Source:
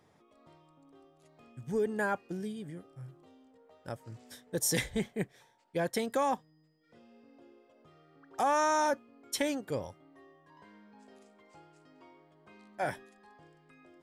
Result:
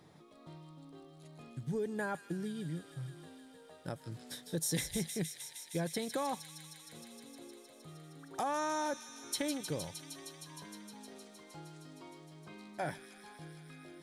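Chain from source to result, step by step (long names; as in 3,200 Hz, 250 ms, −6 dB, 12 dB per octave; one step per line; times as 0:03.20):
thirty-one-band graphic EQ 160 Hz +11 dB, 315 Hz +5 dB, 4,000 Hz +8 dB, 10,000 Hz +5 dB
downward compressor 2 to 1, threshold −44 dBFS, peak gain reduction 12 dB
delay with a high-pass on its return 155 ms, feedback 85%, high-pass 2,900 Hz, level −6 dB
level +3 dB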